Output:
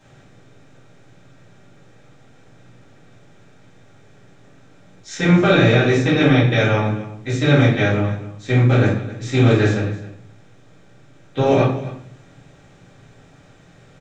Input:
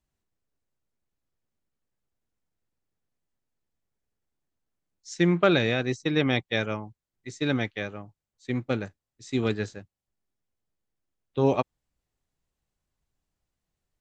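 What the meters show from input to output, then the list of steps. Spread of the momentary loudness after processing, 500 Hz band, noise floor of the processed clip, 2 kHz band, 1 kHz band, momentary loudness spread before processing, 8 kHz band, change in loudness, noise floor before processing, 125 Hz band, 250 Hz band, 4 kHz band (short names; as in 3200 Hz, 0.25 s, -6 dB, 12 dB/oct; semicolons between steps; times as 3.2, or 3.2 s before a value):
13 LU, +9.5 dB, -49 dBFS, +10.0 dB, +9.5 dB, 21 LU, +8.5 dB, +10.0 dB, under -85 dBFS, +15.5 dB, +10.0 dB, +7.5 dB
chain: per-bin compression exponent 0.6; bell 120 Hz +8 dB 0.45 oct; limiter -10 dBFS, peak gain reduction 5 dB; on a send: echo 0.263 s -16.5 dB; on the sum: shoebox room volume 67 m³, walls mixed, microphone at 2.1 m; gain -3 dB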